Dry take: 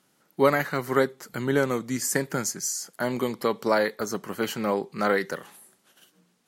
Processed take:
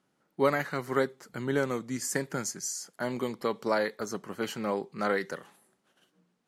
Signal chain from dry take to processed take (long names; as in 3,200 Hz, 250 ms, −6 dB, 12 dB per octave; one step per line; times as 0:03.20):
low-pass filter 11,000 Hz 12 dB per octave
one half of a high-frequency compander decoder only
level −5 dB